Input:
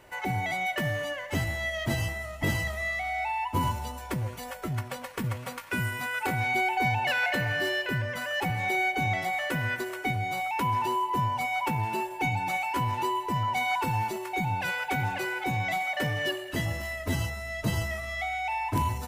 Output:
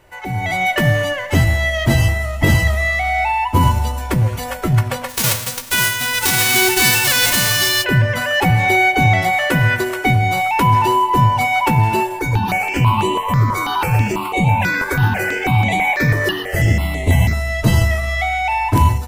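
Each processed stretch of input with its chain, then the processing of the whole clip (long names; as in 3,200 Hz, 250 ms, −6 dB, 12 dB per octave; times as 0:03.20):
0:05.08–0:07.83: spectral envelope flattened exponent 0.1 + hum removal 58.46 Hz, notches 39
0:12.19–0:17.33: echo with shifted repeats 119 ms, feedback 53%, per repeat +92 Hz, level −8.5 dB + step-sequenced phaser 6.1 Hz 770–5,100 Hz
whole clip: low-shelf EQ 110 Hz +11 dB; mains-hum notches 50/100/150/200/250 Hz; automatic gain control gain up to 12 dB; level +1.5 dB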